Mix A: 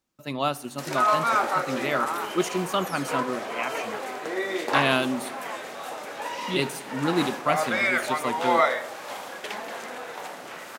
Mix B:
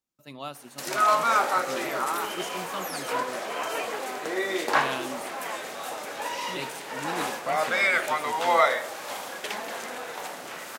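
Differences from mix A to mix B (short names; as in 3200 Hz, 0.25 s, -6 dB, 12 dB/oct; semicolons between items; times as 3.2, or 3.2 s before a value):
speech -12.0 dB; master: add high shelf 4400 Hz +6 dB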